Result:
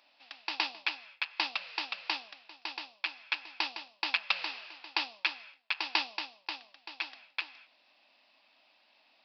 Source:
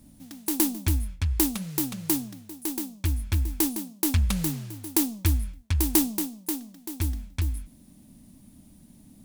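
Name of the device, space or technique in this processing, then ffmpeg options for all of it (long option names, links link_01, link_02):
musical greeting card: -af "aresample=11025,aresample=44100,highpass=frequency=700:width=0.5412,highpass=frequency=700:width=1.3066,equalizer=frequency=2600:width_type=o:width=0.24:gain=11,volume=3.5dB"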